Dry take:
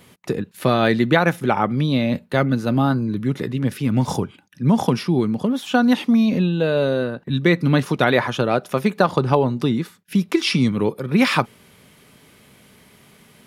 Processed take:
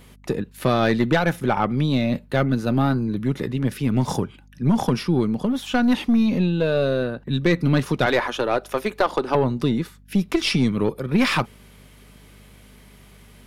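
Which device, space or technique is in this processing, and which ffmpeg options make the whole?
valve amplifier with mains hum: -filter_complex "[0:a]asettb=1/sr,asplit=3[link_01][link_02][link_03];[link_01]atrim=end=8.064[link_04];[link_02]atrim=start=8.06:end=9.35,asetpts=PTS-STARTPTS,afade=type=in:duration=0.004:curve=qsin,afade=type=out:start_time=1.286:duration=0.004:curve=qsin,highpass=frequency=270:width=0.5412,highpass=frequency=270:width=1.3066[link_05];[link_03]atrim=start=9.346[link_06];[link_04][link_05]acrossfade=duration=0.004:curve1=hsin:curve2=qsin[link_07];[link_07][link_06]acrossfade=duration=0.004:curve1=qsin:curve2=hsin,aeval=exprs='(tanh(3.16*val(0)+0.35)-tanh(0.35))/3.16':channel_layout=same,aeval=exprs='val(0)+0.00355*(sin(2*PI*50*n/s)+sin(2*PI*2*50*n/s)/2+sin(2*PI*3*50*n/s)/3+sin(2*PI*4*50*n/s)/4+sin(2*PI*5*50*n/s)/5)':channel_layout=same"

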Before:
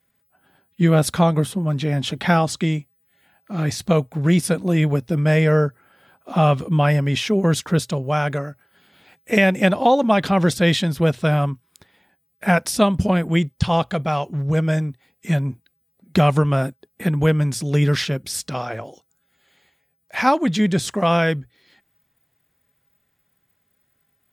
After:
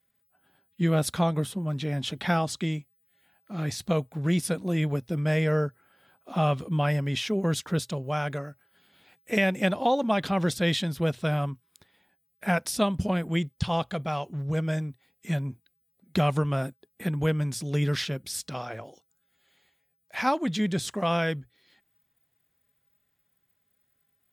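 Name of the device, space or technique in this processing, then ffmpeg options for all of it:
presence and air boost: -af "equalizer=frequency=3600:width_type=o:width=0.77:gain=2.5,highshelf=frequency=10000:gain=4,volume=-8dB"

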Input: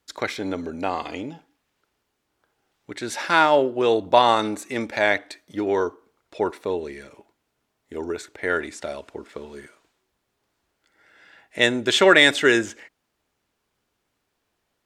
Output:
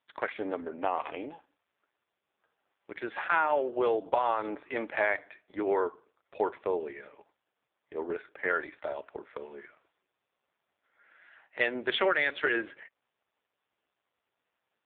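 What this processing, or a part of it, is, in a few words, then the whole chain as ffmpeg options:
voicemail: -af "highpass=440,lowpass=2700,acompressor=threshold=-22dB:ratio=6" -ar 8000 -c:a libopencore_amrnb -b:a 5150

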